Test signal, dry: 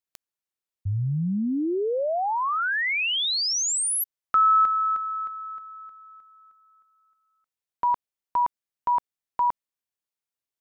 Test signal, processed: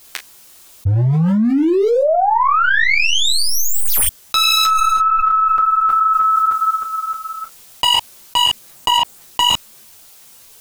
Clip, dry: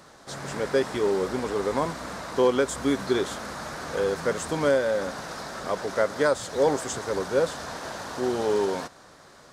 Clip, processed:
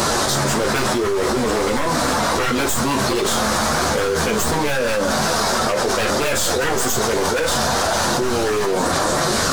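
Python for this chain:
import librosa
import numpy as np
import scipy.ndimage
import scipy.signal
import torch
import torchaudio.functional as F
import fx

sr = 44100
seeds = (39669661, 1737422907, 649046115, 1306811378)

p1 = fx.tracing_dist(x, sr, depth_ms=0.051)
p2 = fx.peak_eq(p1, sr, hz=1900.0, db=-3.0, octaves=0.73)
p3 = fx.rider(p2, sr, range_db=4, speed_s=2.0)
p4 = p2 + F.gain(torch.from_numpy(p3), 2.5).numpy()
p5 = 10.0 ** (-14.5 / 20.0) * (np.abs((p4 / 10.0 ** (-14.5 / 20.0) + 3.0) % 4.0 - 2.0) - 1.0)
p6 = fx.high_shelf(p5, sr, hz=5000.0, db=5.5)
p7 = fx.chorus_voices(p6, sr, voices=6, hz=0.93, base_ms=11, depth_ms=3.0, mix_pct=50)
p8 = fx.room_early_taps(p7, sr, ms=(23, 38), db=(-11.0, -11.5))
p9 = fx.env_flatten(p8, sr, amount_pct=100)
y = F.gain(torch.from_numpy(p9), -2.5).numpy()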